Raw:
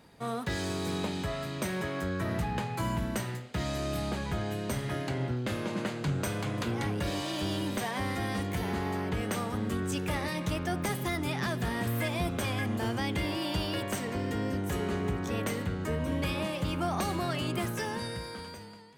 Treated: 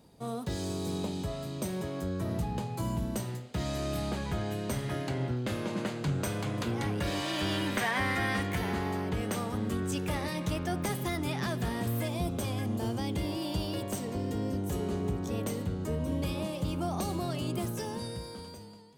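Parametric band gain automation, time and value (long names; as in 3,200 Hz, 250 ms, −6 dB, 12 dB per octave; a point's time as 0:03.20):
parametric band 1,800 Hz 1.5 octaves
0:03.03 −12.5 dB
0:03.81 −2.5 dB
0:06.79 −2.5 dB
0:07.52 +8 dB
0:08.31 +8 dB
0:09.05 −3.5 dB
0:11.61 −3.5 dB
0:12.18 −11.5 dB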